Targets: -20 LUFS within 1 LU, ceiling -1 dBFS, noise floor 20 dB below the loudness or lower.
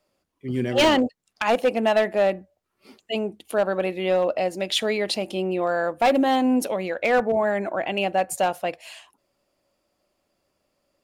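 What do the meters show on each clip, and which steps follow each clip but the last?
clipped 0.7%; flat tops at -13.5 dBFS; loudness -23.0 LUFS; peak -13.5 dBFS; loudness target -20.0 LUFS
-> clip repair -13.5 dBFS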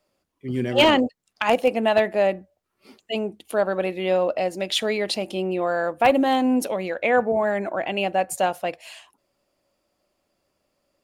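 clipped 0.0%; loudness -22.5 LUFS; peak -4.5 dBFS; loudness target -20.0 LUFS
-> gain +2.5 dB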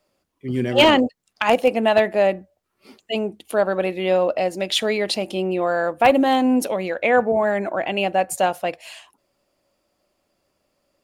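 loudness -20.0 LUFS; peak -2.0 dBFS; noise floor -73 dBFS

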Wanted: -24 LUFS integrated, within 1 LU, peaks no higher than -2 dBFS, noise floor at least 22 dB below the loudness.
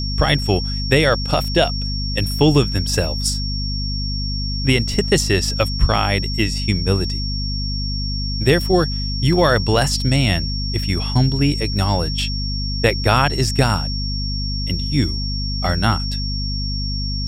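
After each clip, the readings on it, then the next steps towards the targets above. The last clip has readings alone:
hum 50 Hz; harmonics up to 250 Hz; hum level -21 dBFS; steady tone 5500 Hz; tone level -26 dBFS; loudness -19.0 LUFS; peak -2.5 dBFS; loudness target -24.0 LUFS
-> notches 50/100/150/200/250 Hz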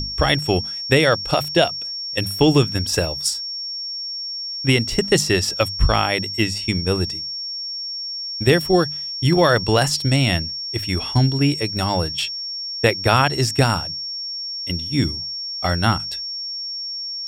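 hum none; steady tone 5500 Hz; tone level -26 dBFS
-> notch 5500 Hz, Q 30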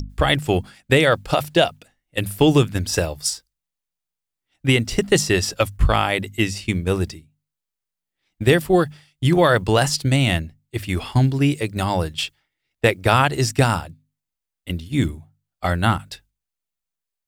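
steady tone none; loudness -20.0 LUFS; peak -3.0 dBFS; loudness target -24.0 LUFS
-> gain -4 dB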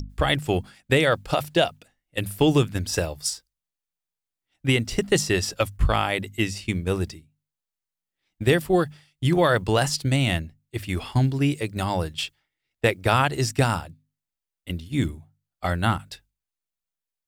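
loudness -24.0 LUFS; peak -7.0 dBFS; noise floor -88 dBFS

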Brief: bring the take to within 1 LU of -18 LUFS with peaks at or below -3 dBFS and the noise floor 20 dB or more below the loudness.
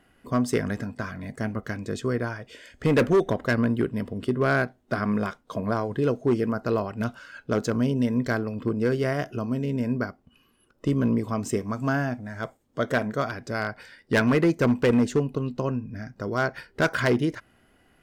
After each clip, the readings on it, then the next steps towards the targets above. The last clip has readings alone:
clipped 1.0%; flat tops at -15.0 dBFS; loudness -26.5 LUFS; peak -15.0 dBFS; loudness target -18.0 LUFS
-> clip repair -15 dBFS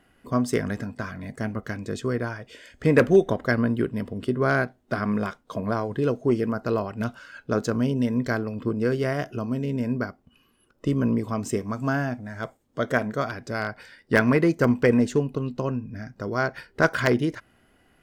clipped 0.0%; loudness -25.5 LUFS; peak -6.0 dBFS; loudness target -18.0 LUFS
-> gain +7.5 dB; limiter -3 dBFS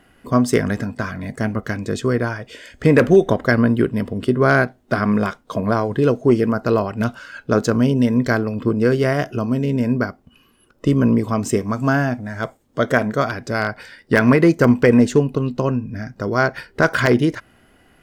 loudness -18.5 LUFS; peak -3.0 dBFS; noise floor -56 dBFS

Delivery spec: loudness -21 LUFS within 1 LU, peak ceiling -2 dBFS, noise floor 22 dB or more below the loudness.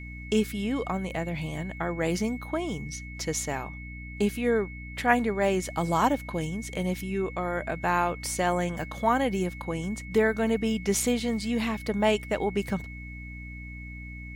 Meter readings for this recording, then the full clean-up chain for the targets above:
hum 60 Hz; harmonics up to 300 Hz; hum level -39 dBFS; steady tone 2200 Hz; tone level -43 dBFS; loudness -28.5 LUFS; peak -8.0 dBFS; loudness target -21.0 LUFS
-> de-hum 60 Hz, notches 5; notch 2200 Hz, Q 30; gain +7.5 dB; limiter -2 dBFS

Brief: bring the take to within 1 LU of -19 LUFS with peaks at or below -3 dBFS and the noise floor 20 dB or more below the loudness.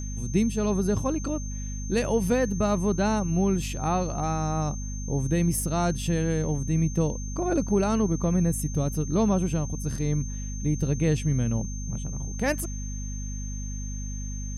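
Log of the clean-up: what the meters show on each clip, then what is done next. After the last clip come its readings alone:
hum 50 Hz; harmonics up to 250 Hz; hum level -31 dBFS; steady tone 6300 Hz; tone level -40 dBFS; loudness -27.0 LUFS; peak -11.0 dBFS; loudness target -19.0 LUFS
-> notches 50/100/150/200/250 Hz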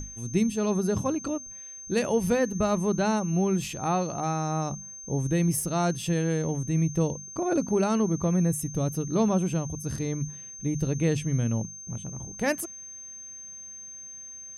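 hum none; steady tone 6300 Hz; tone level -40 dBFS
-> notch 6300 Hz, Q 30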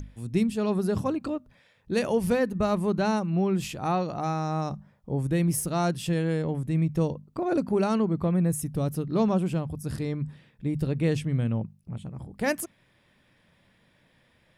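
steady tone none; loudness -27.5 LUFS; peak -12.5 dBFS; loudness target -19.0 LUFS
-> gain +8.5 dB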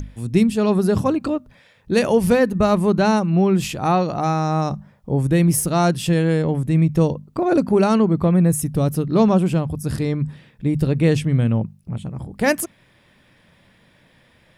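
loudness -19.0 LUFS; peak -4.0 dBFS; noise floor -56 dBFS

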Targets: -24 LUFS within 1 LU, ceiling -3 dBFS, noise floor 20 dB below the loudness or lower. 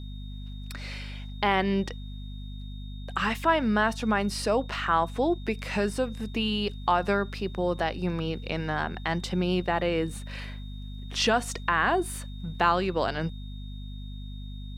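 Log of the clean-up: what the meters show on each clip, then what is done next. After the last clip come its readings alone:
hum 50 Hz; harmonics up to 250 Hz; hum level -36 dBFS; steady tone 3700 Hz; tone level -51 dBFS; loudness -27.5 LUFS; peak -8.0 dBFS; loudness target -24.0 LUFS
-> de-hum 50 Hz, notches 5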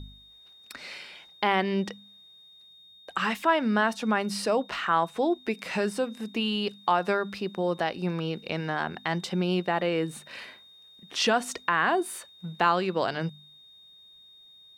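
hum none; steady tone 3700 Hz; tone level -51 dBFS
-> notch 3700 Hz, Q 30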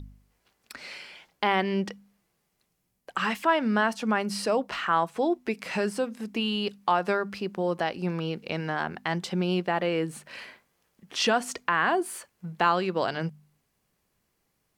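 steady tone none; loudness -27.5 LUFS; peak -8.5 dBFS; loudness target -24.0 LUFS
-> gain +3.5 dB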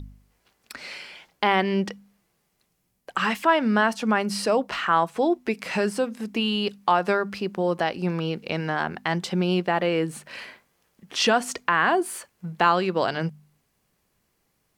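loudness -24.0 LUFS; peak -5.0 dBFS; noise floor -72 dBFS

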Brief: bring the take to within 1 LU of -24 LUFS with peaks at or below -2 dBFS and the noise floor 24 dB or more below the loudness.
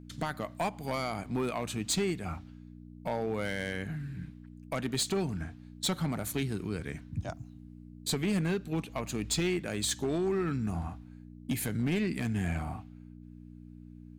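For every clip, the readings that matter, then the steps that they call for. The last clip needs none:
clipped 1.5%; flat tops at -24.5 dBFS; hum 60 Hz; harmonics up to 300 Hz; hum level -46 dBFS; loudness -33.5 LUFS; peak -24.5 dBFS; loudness target -24.0 LUFS
-> clip repair -24.5 dBFS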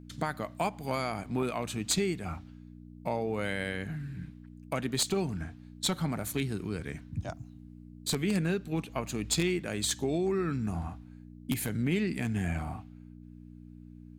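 clipped 0.0%; hum 60 Hz; harmonics up to 300 Hz; hum level -46 dBFS
-> de-hum 60 Hz, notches 5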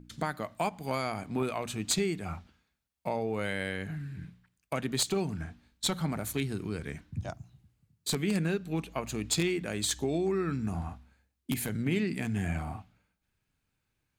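hum none; loudness -33.0 LUFS; peak -15.0 dBFS; loudness target -24.0 LUFS
-> gain +9 dB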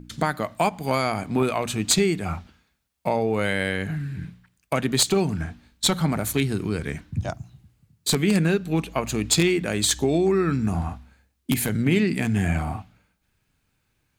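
loudness -24.0 LUFS; peak -6.0 dBFS; noise floor -72 dBFS

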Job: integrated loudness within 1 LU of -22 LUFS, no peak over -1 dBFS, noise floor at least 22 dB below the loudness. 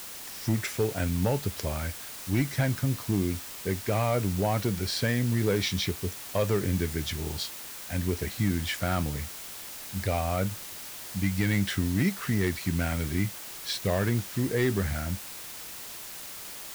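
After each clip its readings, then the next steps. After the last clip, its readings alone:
clipped 0.4%; flat tops at -17.5 dBFS; noise floor -41 dBFS; noise floor target -52 dBFS; loudness -29.5 LUFS; peak -17.5 dBFS; loudness target -22.0 LUFS
-> clip repair -17.5 dBFS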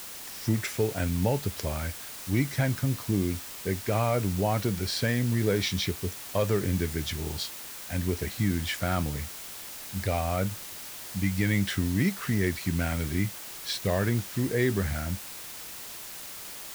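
clipped 0.0%; noise floor -41 dBFS; noise floor target -52 dBFS
-> denoiser 11 dB, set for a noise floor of -41 dBFS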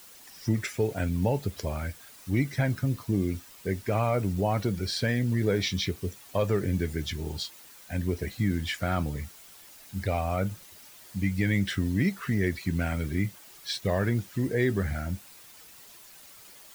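noise floor -51 dBFS; noise floor target -52 dBFS
-> denoiser 6 dB, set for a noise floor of -51 dBFS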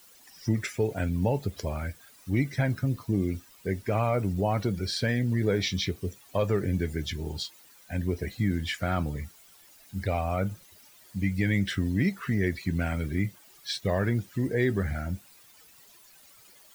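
noise floor -56 dBFS; loudness -29.5 LUFS; peak -13.0 dBFS; loudness target -22.0 LUFS
-> gain +7.5 dB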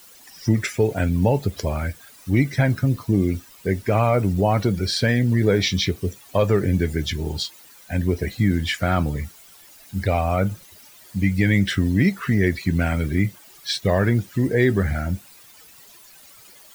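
loudness -22.0 LUFS; peak -5.5 dBFS; noise floor -48 dBFS

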